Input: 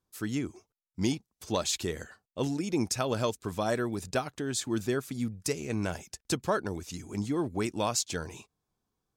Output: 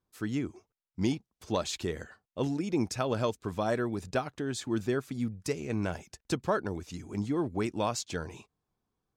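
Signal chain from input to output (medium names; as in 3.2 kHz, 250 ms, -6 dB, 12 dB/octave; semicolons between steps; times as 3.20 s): treble shelf 5 kHz -11 dB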